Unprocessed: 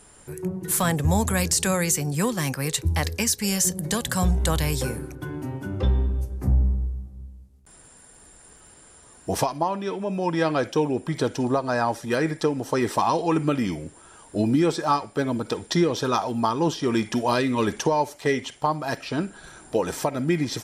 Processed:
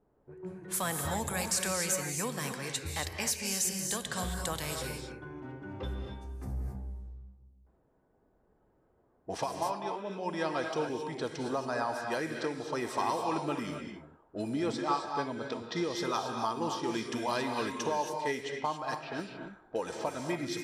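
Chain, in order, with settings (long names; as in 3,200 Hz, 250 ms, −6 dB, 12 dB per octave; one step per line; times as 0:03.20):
0:14.53–0:15.84: low-pass filter 6,900 Hz 12 dB per octave
reverb whose tail is shaped and stops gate 300 ms rising, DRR 3.5 dB
low-pass that shuts in the quiet parts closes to 480 Hz, open at −19.5 dBFS
low-shelf EQ 260 Hz −10 dB
level −8.5 dB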